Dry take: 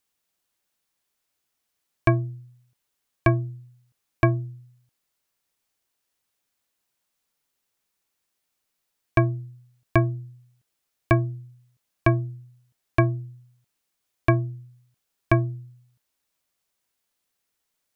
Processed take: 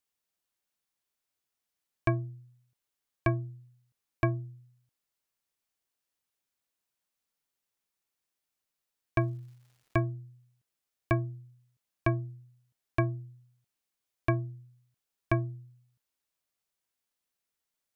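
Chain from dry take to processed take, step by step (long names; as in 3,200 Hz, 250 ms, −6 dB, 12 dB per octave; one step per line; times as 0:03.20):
0:09.19–0:09.99: surface crackle 480 per second −49 dBFS
level −8 dB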